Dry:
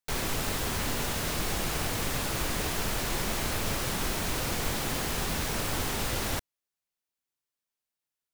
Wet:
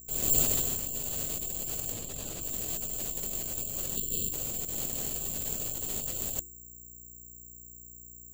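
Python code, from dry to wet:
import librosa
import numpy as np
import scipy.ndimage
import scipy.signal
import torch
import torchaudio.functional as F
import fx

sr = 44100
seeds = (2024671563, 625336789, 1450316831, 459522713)

y = fx.fade_in_head(x, sr, length_s=0.83)
y = fx.spec_box(y, sr, start_s=3.96, length_s=0.37, low_hz=550.0, high_hz=2600.0, gain_db=-20)
y = fx.over_compress(y, sr, threshold_db=-36.0, ratio=-0.5)
y = fx.band_shelf(y, sr, hz=1400.0, db=-9.5, octaves=1.7)
y = fx.hum_notches(y, sr, base_hz=60, count=6)
y = fx.dmg_buzz(y, sr, base_hz=60.0, harmonics=7, level_db=-57.0, tilt_db=-6, odd_only=False)
y = (np.kron(scipy.signal.resample_poly(y, 1, 6), np.eye(6)[0]) * 6)[:len(y)]
y = fx.spec_gate(y, sr, threshold_db=-30, keep='strong')
y = fx.high_shelf(y, sr, hz=10000.0, db=-10.0, at=(1.92, 2.42))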